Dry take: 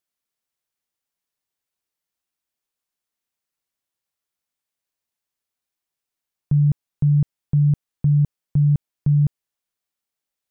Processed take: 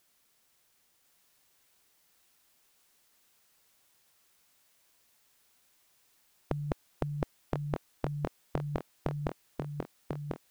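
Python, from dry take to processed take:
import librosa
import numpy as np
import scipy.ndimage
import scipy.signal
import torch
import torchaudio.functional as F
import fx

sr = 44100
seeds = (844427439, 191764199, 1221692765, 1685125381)

y = fx.echo_thinned(x, sr, ms=1044, feedback_pct=56, hz=420.0, wet_db=-4.0)
y = fx.spectral_comp(y, sr, ratio=4.0)
y = F.gain(torch.from_numpy(y), -2.5).numpy()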